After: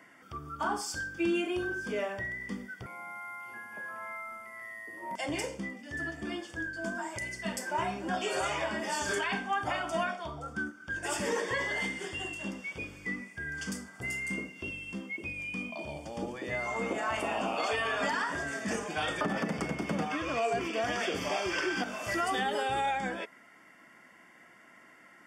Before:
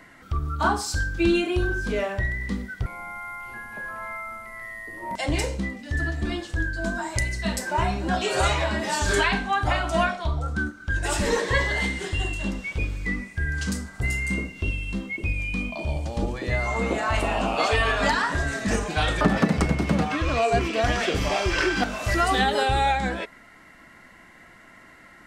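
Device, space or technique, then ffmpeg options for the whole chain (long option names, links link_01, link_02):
PA system with an anti-feedback notch: -af "highpass=190,asuperstop=centerf=4000:order=8:qfactor=6.1,alimiter=limit=-15dB:level=0:latency=1:release=49,volume=-6.5dB"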